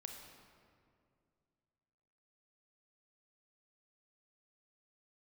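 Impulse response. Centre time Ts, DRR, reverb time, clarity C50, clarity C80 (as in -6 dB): 60 ms, 2.5 dB, 2.3 s, 4.0 dB, 5.0 dB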